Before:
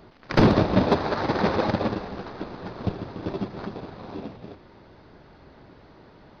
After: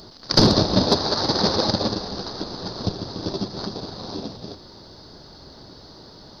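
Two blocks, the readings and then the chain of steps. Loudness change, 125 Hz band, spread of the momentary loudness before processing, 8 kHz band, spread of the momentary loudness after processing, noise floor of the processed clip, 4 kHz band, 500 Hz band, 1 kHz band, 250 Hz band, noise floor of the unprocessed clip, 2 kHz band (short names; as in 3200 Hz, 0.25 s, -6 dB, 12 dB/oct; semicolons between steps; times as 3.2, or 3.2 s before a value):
+3.0 dB, +1.0 dB, 18 LU, n/a, 16 LU, -45 dBFS, +15.5 dB, +1.0 dB, +0.5 dB, +1.0 dB, -52 dBFS, -3.0 dB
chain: resonant high shelf 3400 Hz +12 dB, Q 3; in parallel at -3 dB: compressor, threshold -33 dBFS, peak gain reduction 20 dB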